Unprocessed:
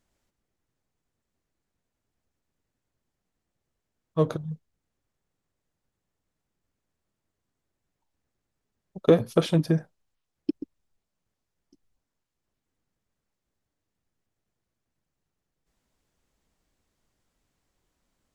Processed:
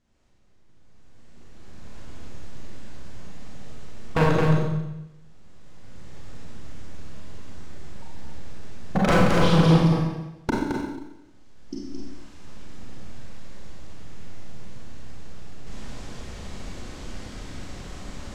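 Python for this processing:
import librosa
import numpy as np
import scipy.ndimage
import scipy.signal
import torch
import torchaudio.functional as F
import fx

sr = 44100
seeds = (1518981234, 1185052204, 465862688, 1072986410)

y = fx.recorder_agc(x, sr, target_db=-11.0, rise_db_per_s=16.0, max_gain_db=30)
y = scipy.signal.sosfilt(scipy.signal.butter(2, 6500.0, 'lowpass', fs=sr, output='sos'), y)
y = 10.0 ** (-17.0 / 20.0) * (np.abs((y / 10.0 ** (-17.0 / 20.0) + 3.0) % 4.0 - 2.0) - 1.0)
y = fx.low_shelf(y, sr, hz=250.0, db=5.5)
y = y + 10.0 ** (-5.0 / 20.0) * np.pad(y, (int(218 * sr / 1000.0), 0))[:len(y)]
y = fx.rev_schroeder(y, sr, rt60_s=0.93, comb_ms=30, drr_db=-3.5)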